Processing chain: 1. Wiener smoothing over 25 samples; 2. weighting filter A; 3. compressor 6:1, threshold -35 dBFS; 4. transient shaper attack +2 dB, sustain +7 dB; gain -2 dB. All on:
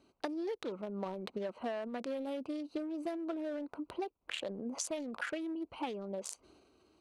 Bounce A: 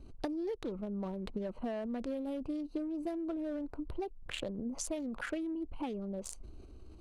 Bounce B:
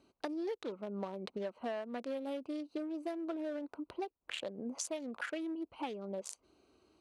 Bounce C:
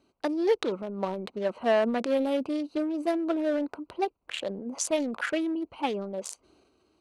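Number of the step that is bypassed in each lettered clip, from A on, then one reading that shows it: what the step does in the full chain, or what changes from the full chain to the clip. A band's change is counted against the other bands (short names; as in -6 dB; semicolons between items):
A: 2, 250 Hz band +5.0 dB; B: 4, loudness change -1.0 LU; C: 3, mean gain reduction 8.0 dB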